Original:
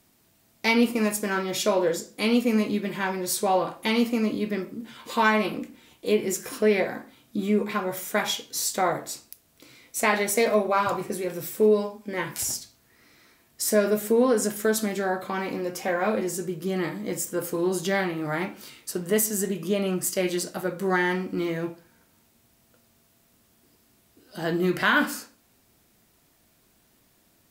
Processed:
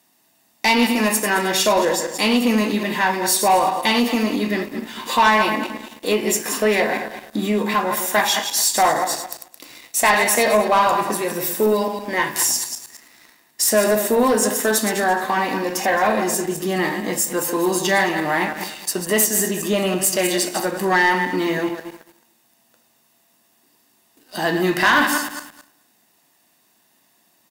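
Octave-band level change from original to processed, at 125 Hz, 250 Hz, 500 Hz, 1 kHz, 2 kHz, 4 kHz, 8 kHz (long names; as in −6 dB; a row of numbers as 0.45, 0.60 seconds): +3.0, +4.0, +4.5, +10.0, +8.5, +9.5, +9.5 decibels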